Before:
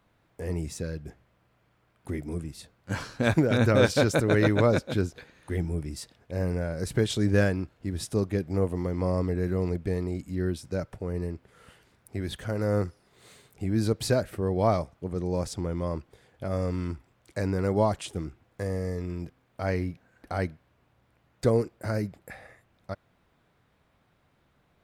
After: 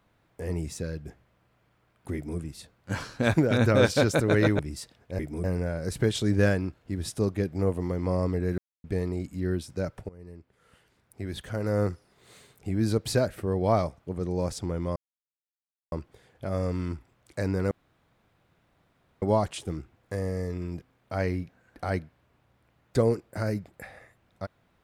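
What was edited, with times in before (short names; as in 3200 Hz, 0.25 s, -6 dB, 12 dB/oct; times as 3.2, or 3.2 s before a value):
2.14–2.39 copy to 6.39
4.59–5.79 cut
9.53–9.79 mute
11.04–12.68 fade in, from -19.5 dB
15.91 insert silence 0.96 s
17.7 insert room tone 1.51 s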